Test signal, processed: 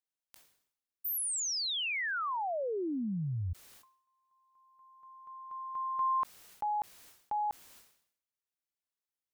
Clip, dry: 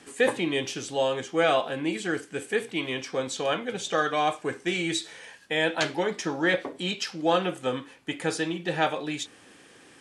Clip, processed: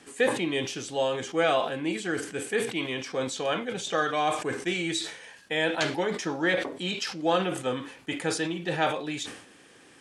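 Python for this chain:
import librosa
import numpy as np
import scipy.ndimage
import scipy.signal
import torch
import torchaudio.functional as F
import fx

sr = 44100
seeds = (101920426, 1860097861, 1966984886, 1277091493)

y = fx.sustainer(x, sr, db_per_s=88.0)
y = y * librosa.db_to_amplitude(-1.5)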